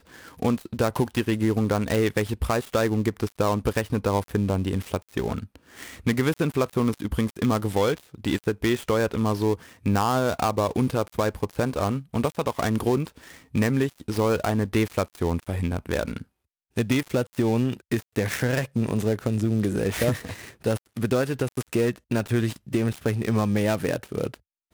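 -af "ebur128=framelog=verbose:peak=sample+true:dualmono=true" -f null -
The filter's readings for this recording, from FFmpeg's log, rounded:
Integrated loudness:
  I:         -22.7 LUFS
  Threshold: -32.8 LUFS
Loudness range:
  LRA:         2.0 LU
  Threshold: -42.8 LUFS
  LRA low:   -23.8 LUFS
  LRA high:  -21.8 LUFS
Sample peak:
  Peak:      -10.0 dBFS
True peak:
  Peak:      -10.0 dBFS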